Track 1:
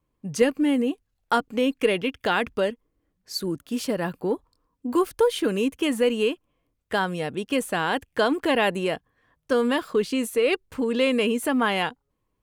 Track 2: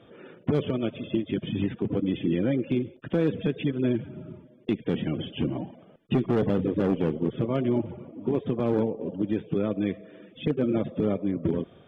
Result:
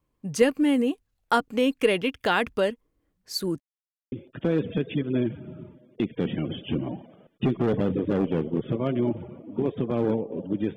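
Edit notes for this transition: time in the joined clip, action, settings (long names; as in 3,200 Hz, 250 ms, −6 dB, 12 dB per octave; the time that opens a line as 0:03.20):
track 1
0:03.60–0:04.12: silence
0:04.12: continue with track 2 from 0:02.81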